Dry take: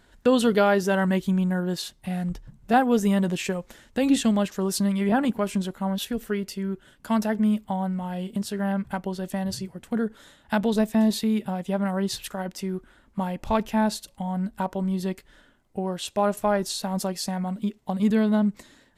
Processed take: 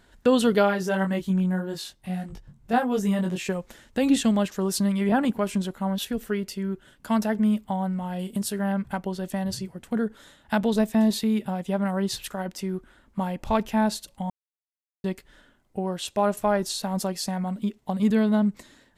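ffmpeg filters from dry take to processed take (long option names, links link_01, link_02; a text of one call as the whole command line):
ffmpeg -i in.wav -filter_complex "[0:a]asplit=3[link_01][link_02][link_03];[link_01]afade=type=out:start_time=0.62:duration=0.02[link_04];[link_02]flanger=delay=19.5:depth=2.6:speed=1.7,afade=type=in:start_time=0.62:duration=0.02,afade=type=out:start_time=3.47:duration=0.02[link_05];[link_03]afade=type=in:start_time=3.47:duration=0.02[link_06];[link_04][link_05][link_06]amix=inputs=3:normalize=0,asettb=1/sr,asplit=3[link_07][link_08][link_09];[link_07]atrim=end=8.194[link_10];[link_08]atrim=start=8.19:end=8.59,asetpts=PTS-STARTPTS,afade=type=in:duration=0.004:curve=qsin,afade=type=out:start_time=0.396:duration=0.004:curve=qsin,equalizer=frequency=11000:width_type=o:width=1.1:gain=9.5[link_11];[link_09]atrim=start=8.586[link_12];[link_10][link_11]acrossfade=duration=0.004:curve1=hsin:curve2=qsin[link_13];[link_13][link_12]acrossfade=duration=0.004:curve1=qsin:curve2=hsin,asplit=3[link_14][link_15][link_16];[link_14]atrim=end=14.3,asetpts=PTS-STARTPTS,afade=type=out:start_time=14.296:duration=0.004:curve=hsin[link_17];[link_15]atrim=start=14.3:end=15.04,asetpts=PTS-STARTPTS,volume=0[link_18];[link_16]atrim=start=15.04,asetpts=PTS-STARTPTS,afade=type=in:duration=0.004:curve=hsin[link_19];[link_17][link_18][link_19]concat=n=3:v=0:a=1" out.wav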